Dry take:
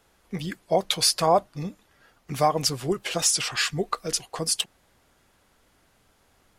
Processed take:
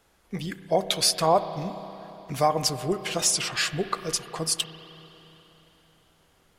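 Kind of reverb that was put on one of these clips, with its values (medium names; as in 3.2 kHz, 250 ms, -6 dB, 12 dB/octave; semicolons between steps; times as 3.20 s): spring tank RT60 3.7 s, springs 31/57 ms, chirp 40 ms, DRR 11 dB; trim -1 dB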